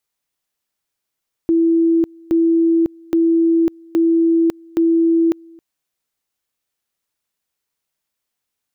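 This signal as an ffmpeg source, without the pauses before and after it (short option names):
-f lavfi -i "aevalsrc='pow(10,(-11-28*gte(mod(t,0.82),0.55))/20)*sin(2*PI*331*t)':d=4.1:s=44100"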